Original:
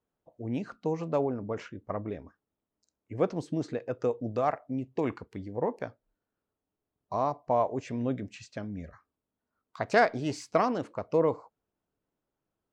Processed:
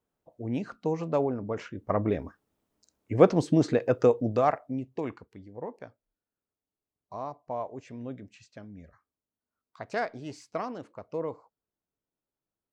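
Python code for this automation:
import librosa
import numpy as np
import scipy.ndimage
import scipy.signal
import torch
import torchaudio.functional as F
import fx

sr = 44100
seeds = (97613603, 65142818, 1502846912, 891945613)

y = fx.gain(x, sr, db=fx.line((1.64, 1.5), (2.04, 9.0), (3.94, 9.0), (4.63, 2.0), (5.36, -8.0)))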